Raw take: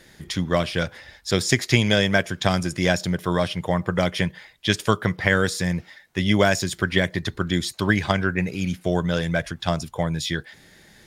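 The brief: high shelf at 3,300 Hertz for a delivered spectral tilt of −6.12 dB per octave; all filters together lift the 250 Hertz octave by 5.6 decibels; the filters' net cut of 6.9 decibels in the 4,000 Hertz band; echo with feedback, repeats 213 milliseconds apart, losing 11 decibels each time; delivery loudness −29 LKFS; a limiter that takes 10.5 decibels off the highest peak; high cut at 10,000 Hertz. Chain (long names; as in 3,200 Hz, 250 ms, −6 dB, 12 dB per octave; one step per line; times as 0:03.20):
low-pass filter 10,000 Hz
parametric band 250 Hz +8.5 dB
high-shelf EQ 3,300 Hz −6.5 dB
parametric band 4,000 Hz −4.5 dB
brickwall limiter −11.5 dBFS
repeating echo 213 ms, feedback 28%, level −11 dB
level −5 dB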